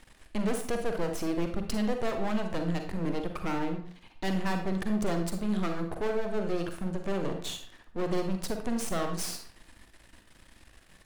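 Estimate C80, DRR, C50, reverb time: 11.0 dB, 5.0 dB, 6.5 dB, 0.55 s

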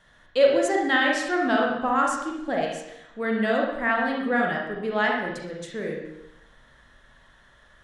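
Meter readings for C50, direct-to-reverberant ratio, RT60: 1.5 dB, -1.5 dB, 0.85 s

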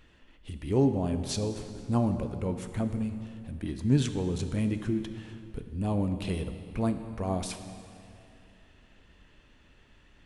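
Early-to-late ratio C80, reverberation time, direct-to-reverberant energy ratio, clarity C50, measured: 10.0 dB, 2.6 s, 8.0 dB, 9.0 dB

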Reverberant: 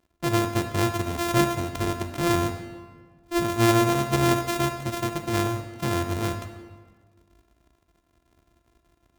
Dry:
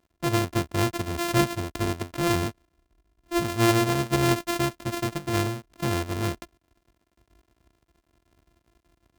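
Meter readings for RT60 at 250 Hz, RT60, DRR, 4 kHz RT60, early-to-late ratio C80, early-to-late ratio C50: 1.7 s, 1.6 s, 7.0 dB, 1.1 s, 10.0 dB, 8.5 dB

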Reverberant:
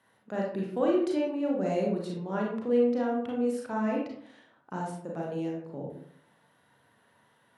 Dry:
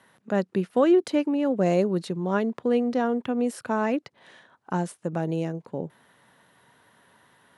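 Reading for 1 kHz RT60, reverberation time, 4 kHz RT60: 0.60 s, 0.65 s, 0.35 s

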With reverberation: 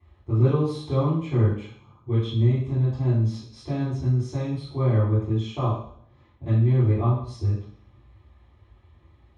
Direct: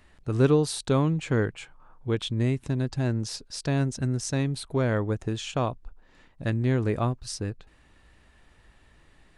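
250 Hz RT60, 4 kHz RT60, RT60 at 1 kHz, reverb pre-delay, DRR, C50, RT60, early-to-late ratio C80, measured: 0.70 s, 0.70 s, 0.55 s, 3 ms, -14.0 dB, 3.0 dB, 0.60 s, 7.5 dB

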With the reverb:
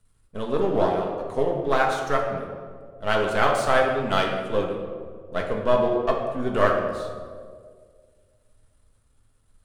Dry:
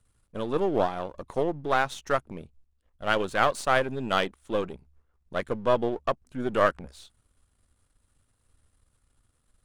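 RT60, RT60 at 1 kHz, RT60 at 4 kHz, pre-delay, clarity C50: 1.9 s, 1.6 s, 1.0 s, 4 ms, 4.0 dB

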